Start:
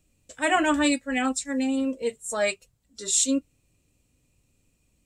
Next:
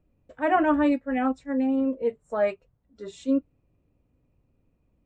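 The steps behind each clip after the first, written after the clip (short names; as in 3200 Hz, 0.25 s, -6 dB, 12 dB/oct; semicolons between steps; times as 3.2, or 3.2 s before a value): LPF 1100 Hz 12 dB/oct; low shelf 420 Hz -3 dB; gain +3.5 dB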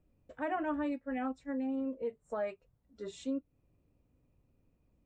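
compressor 2.5:1, threshold -33 dBFS, peak gain reduction 11.5 dB; gain -3.5 dB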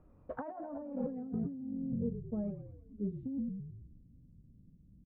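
low-pass sweep 1200 Hz -> 190 Hz, 0.23–1.73; frequency-shifting echo 0.108 s, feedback 56%, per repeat -41 Hz, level -10 dB; negative-ratio compressor -41 dBFS, ratio -1; gain +2.5 dB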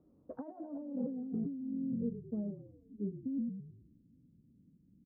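band-pass 290 Hz, Q 1.4; gain +2 dB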